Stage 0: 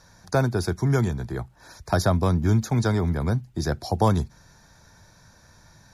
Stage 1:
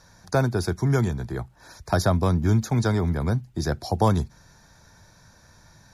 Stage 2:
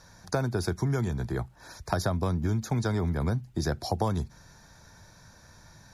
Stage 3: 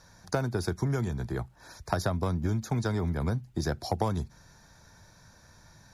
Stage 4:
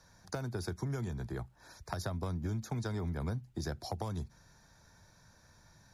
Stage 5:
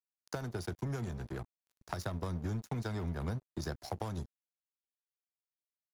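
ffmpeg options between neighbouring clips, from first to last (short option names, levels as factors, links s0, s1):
-af anull
-af "acompressor=threshold=0.0631:ratio=6"
-af "aeval=exprs='0.299*(cos(1*acos(clip(val(0)/0.299,-1,1)))-cos(1*PI/2))+0.0106*(cos(7*acos(clip(val(0)/0.299,-1,1)))-cos(7*PI/2))':c=same"
-filter_complex "[0:a]acrossover=split=120|3000[s0][s1][s2];[s1]acompressor=threshold=0.0355:ratio=6[s3];[s0][s3][s2]amix=inputs=3:normalize=0,volume=0.501"
-af "aeval=exprs='sgn(val(0))*max(abs(val(0))-0.00501,0)':c=same,volume=1.19"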